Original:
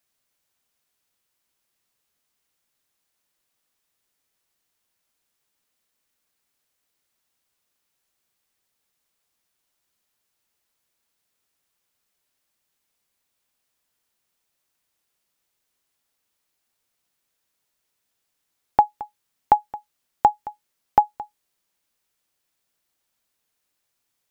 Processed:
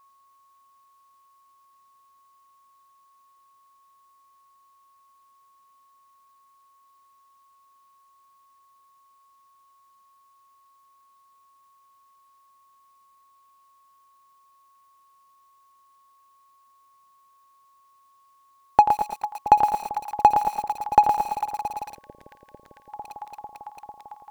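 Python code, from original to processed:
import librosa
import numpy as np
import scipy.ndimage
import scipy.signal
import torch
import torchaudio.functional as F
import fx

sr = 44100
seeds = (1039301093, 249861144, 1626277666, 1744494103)

p1 = x + fx.echo_alternate(x, sr, ms=224, hz=810.0, feedback_pct=88, wet_db=-13.0, dry=0)
p2 = fx.spec_box(p1, sr, start_s=21.87, length_s=1.02, low_hz=610.0, high_hz=1500.0, gain_db=-21)
p3 = p2 + 10.0 ** (-59.0 / 20.0) * np.sin(2.0 * np.pi * 1100.0 * np.arange(len(p2)) / sr)
p4 = p3 + 10.0 ** (-13.5 / 20.0) * np.pad(p3, (int(86 * sr / 1000.0), 0))[:len(p3)]
p5 = np.clip(p4, -10.0 ** (-19.5 / 20.0), 10.0 ** (-19.5 / 20.0))
p6 = p4 + F.gain(torch.from_numpy(p5), -5.5).numpy()
y = fx.echo_crushed(p6, sr, ms=115, feedback_pct=35, bits=6, wet_db=-6.0)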